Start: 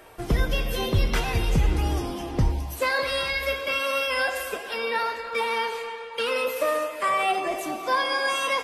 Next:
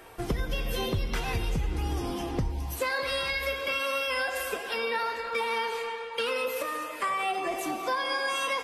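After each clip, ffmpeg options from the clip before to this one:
ffmpeg -i in.wav -af "acompressor=threshold=-26dB:ratio=5,bandreject=frequency=610:width=12" out.wav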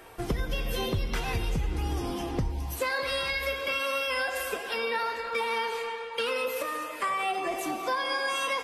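ffmpeg -i in.wav -af anull out.wav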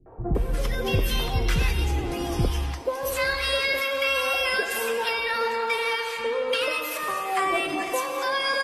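ffmpeg -i in.wav -filter_complex "[0:a]acrossover=split=240|1000[link_01][link_02][link_03];[link_02]adelay=60[link_04];[link_03]adelay=350[link_05];[link_01][link_04][link_05]amix=inputs=3:normalize=0,volume=6dB" out.wav

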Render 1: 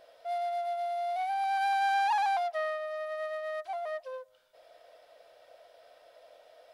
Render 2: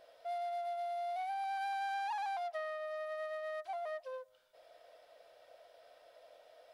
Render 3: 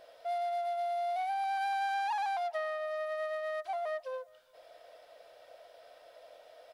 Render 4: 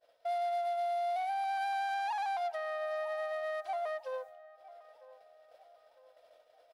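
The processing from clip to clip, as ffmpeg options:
ffmpeg -i in.wav -af "acompressor=threshold=-33dB:ratio=4,volume=-3.5dB" out.wav
ffmpeg -i in.wav -filter_complex "[0:a]asplit=2[link_01][link_02];[link_02]adelay=414,volume=-28dB,highshelf=frequency=4000:gain=-9.32[link_03];[link_01][link_03]amix=inputs=2:normalize=0,volume=5dB" out.wav
ffmpeg -i in.wav -filter_complex "[0:a]agate=range=-33dB:threshold=-45dB:ratio=3:detection=peak,alimiter=level_in=7dB:limit=-24dB:level=0:latency=1:release=430,volume=-7dB,asplit=2[link_01][link_02];[link_02]adelay=952,lowpass=frequency=1300:poles=1,volume=-17.5dB,asplit=2[link_03][link_04];[link_04]adelay=952,lowpass=frequency=1300:poles=1,volume=0.51,asplit=2[link_05][link_06];[link_06]adelay=952,lowpass=frequency=1300:poles=1,volume=0.51,asplit=2[link_07][link_08];[link_08]adelay=952,lowpass=frequency=1300:poles=1,volume=0.51[link_09];[link_01][link_03][link_05][link_07][link_09]amix=inputs=5:normalize=0,volume=2.5dB" out.wav

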